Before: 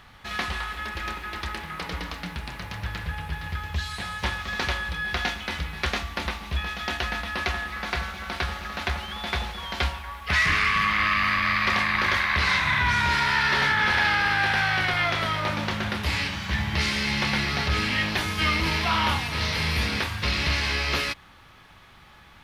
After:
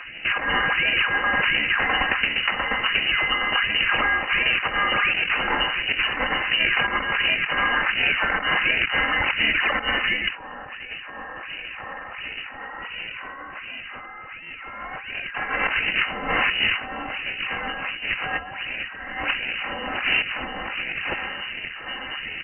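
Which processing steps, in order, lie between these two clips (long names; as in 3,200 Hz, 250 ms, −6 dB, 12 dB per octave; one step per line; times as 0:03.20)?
low shelf with overshoot 590 Hz −10 dB, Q 1.5
comb filter 3.8 ms, depth 98%
in parallel at 0 dB: brickwall limiter −16.5 dBFS, peak gain reduction 10 dB
on the sum: slap from a distant wall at 280 metres, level −12 dB
sample-and-hold swept by an LFO 14×, swing 160% 1.4 Hz
on a send at −17 dB: convolution reverb RT60 0.75 s, pre-delay 107 ms
on the sum: compressor whose output falls as the input rises −24 dBFS, ratio −0.5
voice inversion scrambler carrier 2,900 Hz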